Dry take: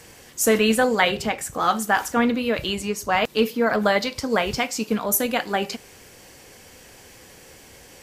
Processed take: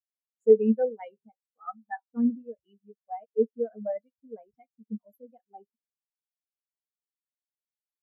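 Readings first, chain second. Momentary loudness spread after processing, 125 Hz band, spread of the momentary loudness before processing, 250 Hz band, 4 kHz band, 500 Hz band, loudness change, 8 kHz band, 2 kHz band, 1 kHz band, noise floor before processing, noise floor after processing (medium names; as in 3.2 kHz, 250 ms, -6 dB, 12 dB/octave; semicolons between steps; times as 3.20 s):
21 LU, under -10 dB, 8 LU, -6.5 dB, under -40 dB, -4.5 dB, -5.0 dB, under -40 dB, -27.0 dB, -18.0 dB, -48 dBFS, under -85 dBFS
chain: spectral contrast expander 4:1; trim -4.5 dB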